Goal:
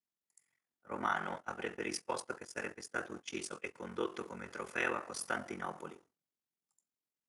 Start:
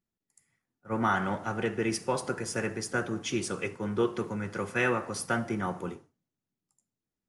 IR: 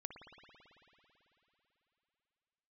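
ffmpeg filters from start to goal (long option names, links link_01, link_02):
-filter_complex "[0:a]asettb=1/sr,asplit=3[link_01][link_02][link_03];[link_01]atrim=end=1.144[link_04];[link_02]atrim=start=1.14:end=3.75,asetpts=PTS-STARTPTS,afade=type=in:duration=0.004:curve=qsin,afade=type=out:start_time=2.606:duration=0.004:curve=qsin,agate=range=-20dB:threshold=-33dB:ratio=16:detection=peak[link_05];[link_03]atrim=start=3.746[link_06];[link_04][link_05]acrossfade=duration=0.004:curve1=hsin:curve2=qsin[link_07];[link_07][link_06]acrossfade=duration=0.004:curve1=qsin:curve2=hsin,highpass=frequency=580:poles=1,aeval=exprs='val(0)*sin(2*PI*22*n/s)':channel_layout=same,volume=-2.5dB"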